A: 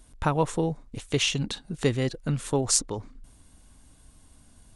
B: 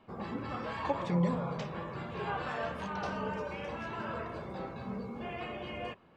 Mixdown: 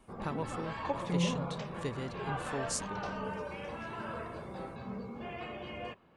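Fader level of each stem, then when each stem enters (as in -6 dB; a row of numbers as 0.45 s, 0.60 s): -13.5 dB, -2.0 dB; 0.00 s, 0.00 s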